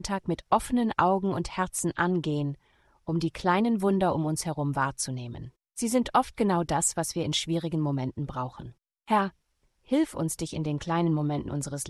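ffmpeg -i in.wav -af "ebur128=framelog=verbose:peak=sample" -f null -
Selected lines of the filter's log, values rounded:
Integrated loudness:
  I:         -27.9 LUFS
  Threshold: -38.3 LUFS
Loudness range:
  LRA:         2.7 LU
  Threshold: -48.5 LUFS
  LRA low:   -30.3 LUFS
  LRA high:  -27.6 LUFS
Sample peak:
  Peak:       -6.2 dBFS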